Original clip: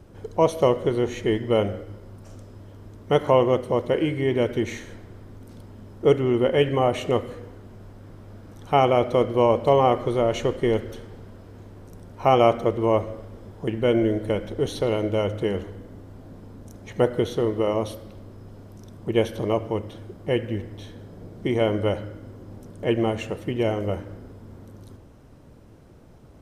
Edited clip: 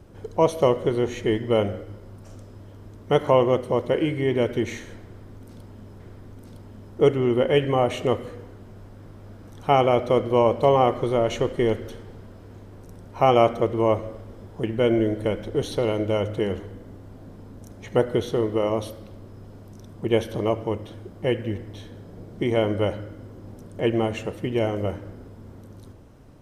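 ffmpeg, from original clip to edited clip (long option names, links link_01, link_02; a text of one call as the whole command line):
ffmpeg -i in.wav -filter_complex "[0:a]asplit=2[link_01][link_02];[link_01]atrim=end=6.002[link_03];[link_02]atrim=start=5.038[link_04];[link_03][link_04]acrossfade=duration=0.004:curve1=hsin:curve2=hsin" out.wav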